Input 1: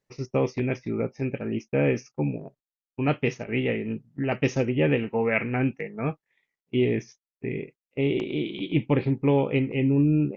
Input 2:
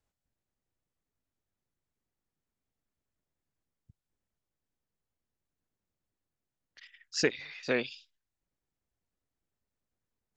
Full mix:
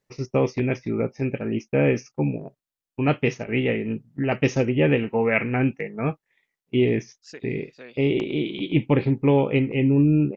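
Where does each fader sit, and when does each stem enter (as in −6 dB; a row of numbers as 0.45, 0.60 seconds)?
+3.0, −14.0 decibels; 0.00, 0.10 seconds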